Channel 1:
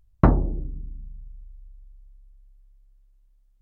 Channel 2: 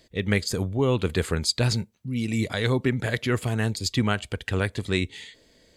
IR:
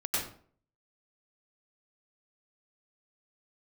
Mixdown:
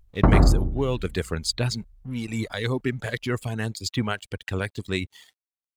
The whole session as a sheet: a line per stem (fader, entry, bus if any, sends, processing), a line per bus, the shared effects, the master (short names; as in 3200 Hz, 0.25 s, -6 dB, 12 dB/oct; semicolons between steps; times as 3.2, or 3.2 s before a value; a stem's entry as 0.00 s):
+1.5 dB, 0.00 s, send -8.5 dB, auto duck -8 dB, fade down 0.25 s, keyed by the second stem
-1.5 dB, 0.00 s, no send, crossover distortion -46.5 dBFS; reverb removal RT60 0.65 s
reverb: on, RT60 0.50 s, pre-delay 89 ms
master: dry